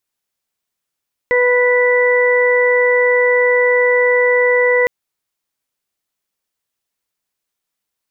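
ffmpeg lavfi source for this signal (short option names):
-f lavfi -i "aevalsrc='0.251*sin(2*PI*493*t)+0.0708*sin(2*PI*986*t)+0.0299*sin(2*PI*1479*t)+0.188*sin(2*PI*1972*t)':d=3.56:s=44100"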